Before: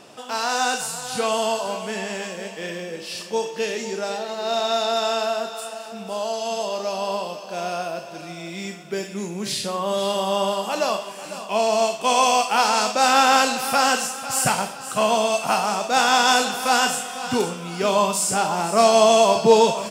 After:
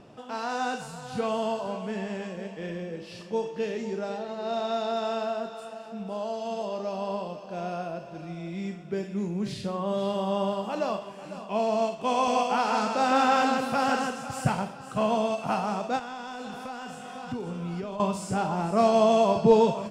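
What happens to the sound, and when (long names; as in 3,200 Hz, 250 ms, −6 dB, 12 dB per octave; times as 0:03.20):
0:12.12–0:14.41: single-tap delay 154 ms −4 dB
0:15.99–0:18.00: downward compressor, threshold −27 dBFS
whole clip: RIAA equalisation playback; every ending faded ahead of time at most 240 dB per second; level −7.5 dB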